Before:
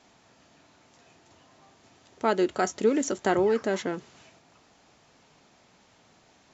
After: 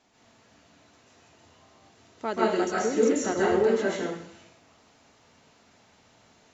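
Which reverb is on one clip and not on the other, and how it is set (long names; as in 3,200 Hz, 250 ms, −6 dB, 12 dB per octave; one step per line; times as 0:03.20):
dense smooth reverb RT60 0.67 s, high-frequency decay 1×, pre-delay 120 ms, DRR −6.5 dB
level −6.5 dB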